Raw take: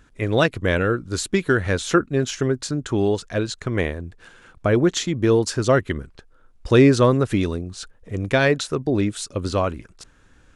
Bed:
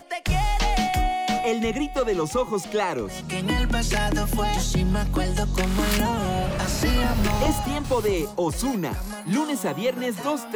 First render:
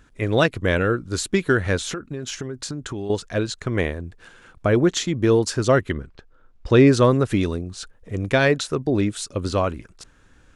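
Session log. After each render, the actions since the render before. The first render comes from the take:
0:01.88–0:03.10: downward compressor 12 to 1, threshold −25 dBFS
0:05.91–0:06.87: high-frequency loss of the air 83 metres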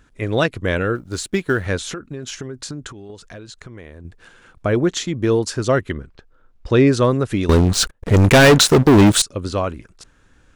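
0:00.95–0:01.66: mu-law and A-law mismatch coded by A
0:02.90–0:04.05: downward compressor, threshold −34 dBFS
0:07.49–0:09.22: leveller curve on the samples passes 5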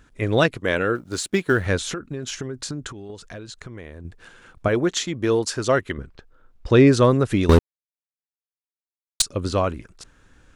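0:00.56–0:01.51: high-pass filter 320 Hz → 110 Hz 6 dB per octave
0:04.68–0:05.98: low-shelf EQ 310 Hz −7.5 dB
0:07.59–0:09.20: silence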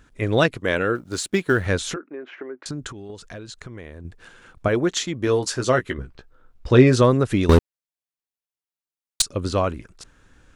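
0:01.96–0:02.66: Chebyshev band-pass filter 310–2,200 Hz, order 3
0:05.25–0:07.02: double-tracking delay 16 ms −7.5 dB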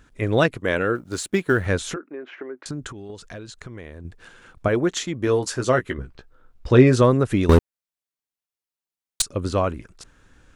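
dynamic equaliser 4,400 Hz, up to −4 dB, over −43 dBFS, Q 0.97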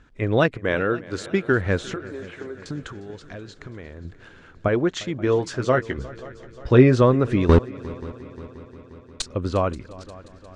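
high-frequency loss of the air 110 metres
echo machine with several playback heads 177 ms, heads second and third, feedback 60%, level −20.5 dB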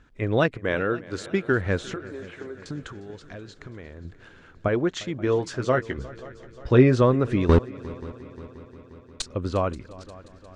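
level −2.5 dB

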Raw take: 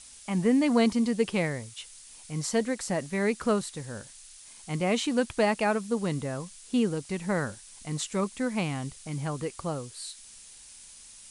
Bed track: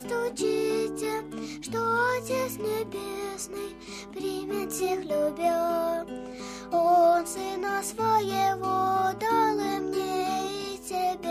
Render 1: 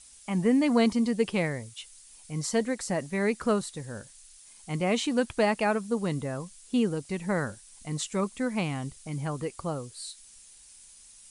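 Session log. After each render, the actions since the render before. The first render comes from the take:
broadband denoise 6 dB, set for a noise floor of −50 dBFS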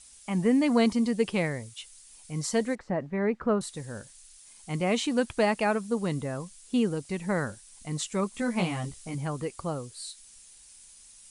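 0:02.75–0:03.61: low-pass filter 1,600 Hz
0:08.32–0:09.15: double-tracking delay 17 ms −2 dB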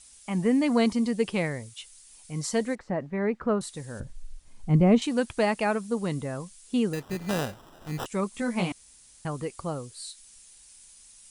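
0:04.00–0:05.02: spectral tilt −4.5 dB per octave
0:06.93–0:08.06: sample-rate reduction 2,200 Hz
0:08.72–0:09.25: fill with room tone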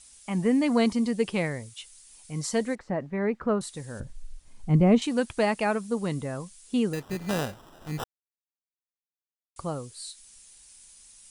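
0:08.04–0:09.56: silence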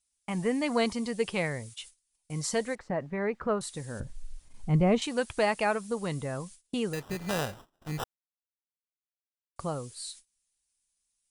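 dynamic equaliser 250 Hz, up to −8 dB, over −37 dBFS, Q 1.2
noise gate −47 dBFS, range −27 dB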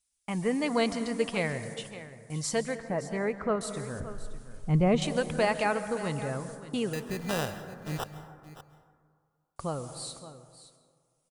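single-tap delay 571 ms −14.5 dB
dense smooth reverb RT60 1.9 s, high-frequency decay 0.3×, pre-delay 120 ms, DRR 11 dB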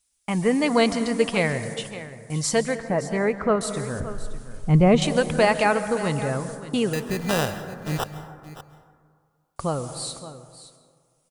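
level +7.5 dB

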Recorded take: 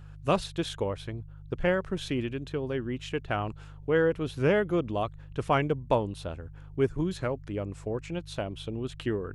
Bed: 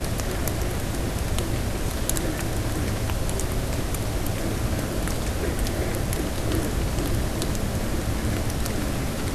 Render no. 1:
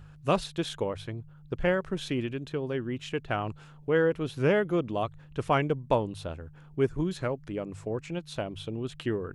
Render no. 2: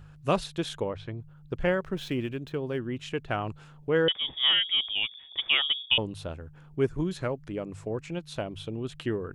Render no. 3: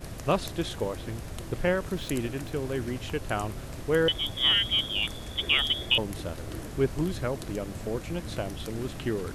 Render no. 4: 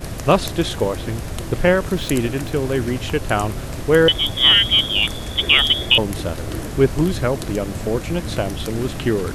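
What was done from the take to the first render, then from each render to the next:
hum removal 50 Hz, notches 2
0:00.80–0:01.20: high-frequency loss of the air 130 metres; 0:01.79–0:02.80: running median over 5 samples; 0:04.08–0:05.98: voice inversion scrambler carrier 3,500 Hz
mix in bed −13 dB
level +10.5 dB; brickwall limiter −2 dBFS, peak gain reduction 1 dB

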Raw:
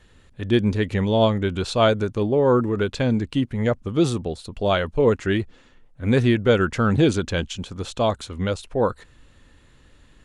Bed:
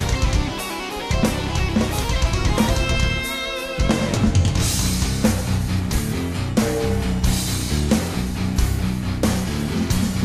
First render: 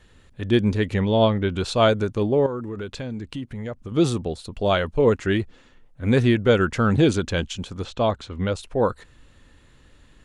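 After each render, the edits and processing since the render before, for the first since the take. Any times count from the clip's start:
0:00.99–0:01.56: Savitzky-Golay smoothing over 15 samples
0:02.46–0:03.92: downward compressor 2.5 to 1, threshold −32 dBFS
0:07.84–0:08.55: high-frequency loss of the air 110 metres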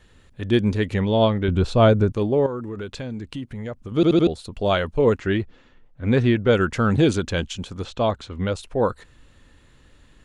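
0:01.48–0:02.12: spectral tilt −2.5 dB per octave
0:03.95: stutter in place 0.08 s, 4 plays
0:05.20–0:06.53: high-frequency loss of the air 100 metres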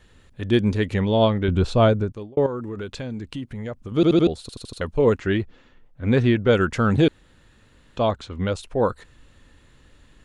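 0:01.74–0:02.37: fade out
0:04.41: stutter in place 0.08 s, 5 plays
0:07.08–0:07.97: fill with room tone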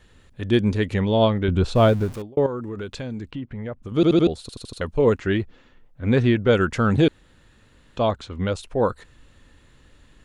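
0:01.75–0:02.22: converter with a step at zero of −34 dBFS
0:03.31–0:03.83: low-pass filter 2,600 Hz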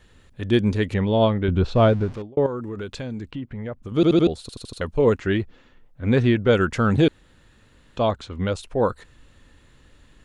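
0:00.94–0:02.46: high-frequency loss of the air 120 metres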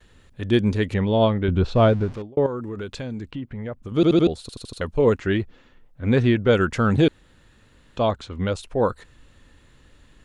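noise gate with hold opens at −49 dBFS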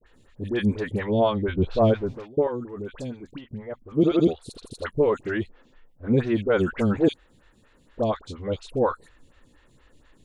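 all-pass dispersion highs, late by 62 ms, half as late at 1,300 Hz
phaser with staggered stages 4.2 Hz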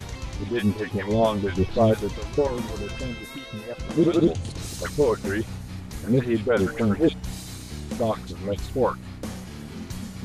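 mix in bed −14.5 dB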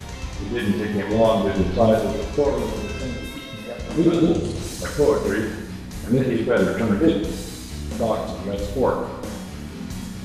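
dense smooth reverb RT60 1.1 s, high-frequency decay 0.9×, DRR 0 dB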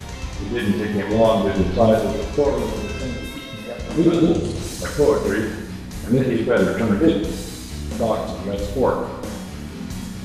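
level +1.5 dB

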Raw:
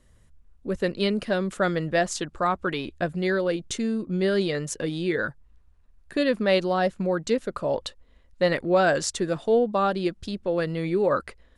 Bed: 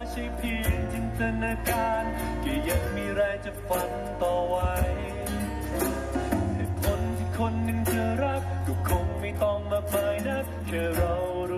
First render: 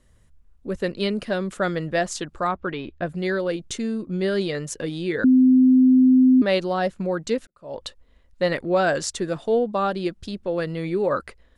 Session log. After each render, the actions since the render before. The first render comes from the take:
0:02.51–0:03.07: high-frequency loss of the air 220 metres
0:05.24–0:06.42: beep over 257 Hz −11 dBFS
0:07.47–0:07.87: fade in quadratic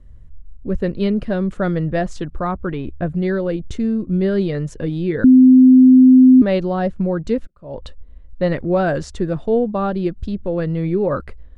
RIAA equalisation playback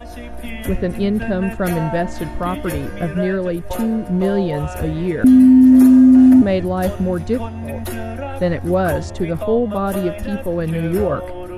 mix in bed −0.5 dB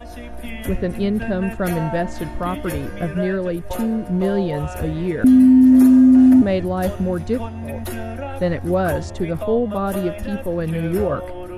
level −2 dB

